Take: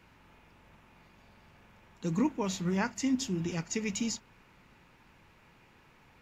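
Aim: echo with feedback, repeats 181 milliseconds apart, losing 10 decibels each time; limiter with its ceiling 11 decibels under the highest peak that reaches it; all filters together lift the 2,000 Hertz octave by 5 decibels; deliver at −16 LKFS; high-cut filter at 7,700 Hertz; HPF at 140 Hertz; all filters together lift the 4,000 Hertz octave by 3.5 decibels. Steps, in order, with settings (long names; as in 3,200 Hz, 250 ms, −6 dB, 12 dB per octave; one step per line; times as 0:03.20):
high-pass filter 140 Hz
low-pass filter 7,700 Hz
parametric band 2,000 Hz +5.5 dB
parametric band 4,000 Hz +3.5 dB
brickwall limiter −25 dBFS
repeating echo 181 ms, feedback 32%, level −10 dB
level +19 dB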